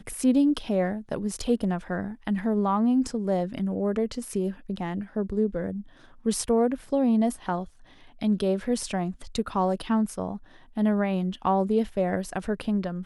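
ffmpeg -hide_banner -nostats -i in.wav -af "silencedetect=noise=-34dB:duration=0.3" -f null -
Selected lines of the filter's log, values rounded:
silence_start: 5.81
silence_end: 6.26 | silence_duration: 0.45
silence_start: 7.64
silence_end: 8.21 | silence_duration: 0.57
silence_start: 10.37
silence_end: 10.77 | silence_duration: 0.40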